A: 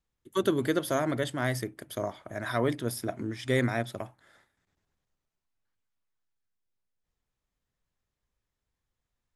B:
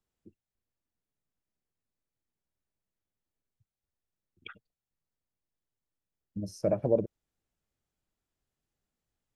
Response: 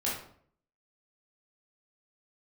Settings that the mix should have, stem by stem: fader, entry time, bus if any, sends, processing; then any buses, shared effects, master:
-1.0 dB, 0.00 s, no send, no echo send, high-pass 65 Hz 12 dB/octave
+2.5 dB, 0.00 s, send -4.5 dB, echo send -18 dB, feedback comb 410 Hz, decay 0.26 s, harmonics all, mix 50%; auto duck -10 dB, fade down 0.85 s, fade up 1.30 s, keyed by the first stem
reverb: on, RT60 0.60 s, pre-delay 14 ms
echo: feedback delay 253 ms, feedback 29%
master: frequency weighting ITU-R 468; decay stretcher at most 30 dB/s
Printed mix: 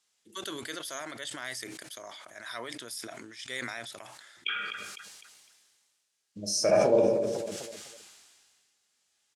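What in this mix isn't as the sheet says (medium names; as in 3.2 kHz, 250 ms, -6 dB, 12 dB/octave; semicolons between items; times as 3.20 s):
stem A -1.0 dB -> -10.5 dB; stem B +2.5 dB -> +9.0 dB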